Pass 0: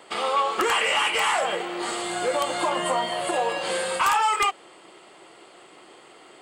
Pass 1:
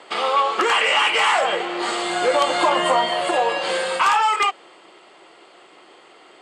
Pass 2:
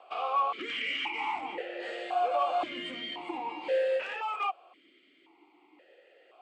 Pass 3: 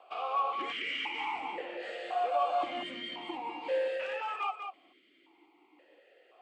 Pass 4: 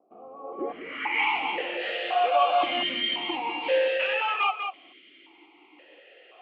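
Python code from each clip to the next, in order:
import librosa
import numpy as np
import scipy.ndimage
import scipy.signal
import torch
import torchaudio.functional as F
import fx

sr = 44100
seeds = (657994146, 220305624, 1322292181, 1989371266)

y1 = fx.highpass(x, sr, hz=280.0, slope=6)
y1 = fx.rider(y1, sr, range_db=10, speed_s=2.0)
y1 = scipy.signal.sosfilt(scipy.signal.butter(2, 6200.0, 'lowpass', fs=sr, output='sos'), y1)
y1 = F.gain(torch.from_numpy(y1), 5.0).numpy()
y2 = fx.tube_stage(y1, sr, drive_db=14.0, bias=0.25)
y2 = fx.vowel_held(y2, sr, hz=1.9)
y3 = y2 + 10.0 ** (-7.0 / 20.0) * np.pad(y2, (int(195 * sr / 1000.0), 0))[:len(y2)]
y3 = F.gain(torch.from_numpy(y3), -3.0).numpy()
y4 = fx.filter_sweep_lowpass(y3, sr, from_hz=250.0, to_hz=3000.0, start_s=0.36, end_s=1.3, q=2.6)
y4 = F.gain(torch.from_numpy(y4), 7.0).numpy()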